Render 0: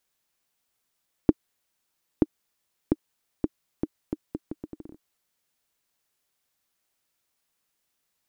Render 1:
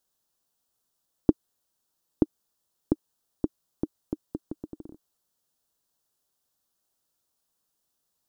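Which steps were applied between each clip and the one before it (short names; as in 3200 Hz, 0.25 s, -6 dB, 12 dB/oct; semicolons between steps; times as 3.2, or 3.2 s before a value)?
bell 2200 Hz -14.5 dB 0.72 oct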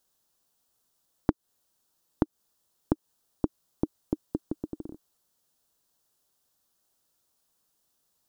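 compressor 6:1, threshold -25 dBFS, peak gain reduction 11.5 dB; gain +4 dB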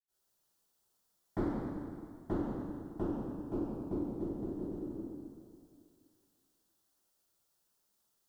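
reverb RT60 2.2 s, pre-delay 77 ms; gain +1 dB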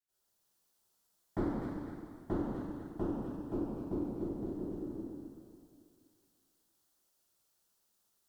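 thin delay 0.248 s, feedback 36%, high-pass 1500 Hz, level -4.5 dB; vibrato 0.51 Hz 6.4 cents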